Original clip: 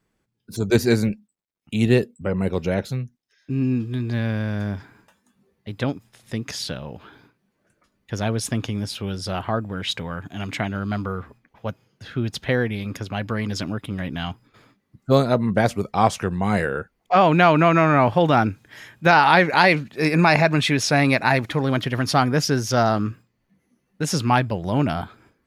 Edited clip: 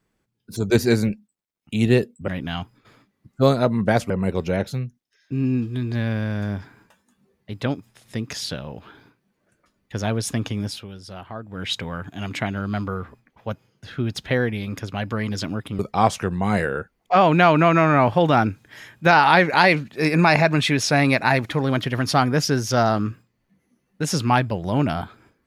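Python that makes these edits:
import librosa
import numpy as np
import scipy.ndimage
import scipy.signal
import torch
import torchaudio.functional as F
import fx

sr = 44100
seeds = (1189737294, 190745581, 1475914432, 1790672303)

y = fx.edit(x, sr, fx.fade_down_up(start_s=8.88, length_s=0.94, db=-10.5, fade_s=0.17),
    fx.move(start_s=13.97, length_s=1.82, to_s=2.28), tone=tone)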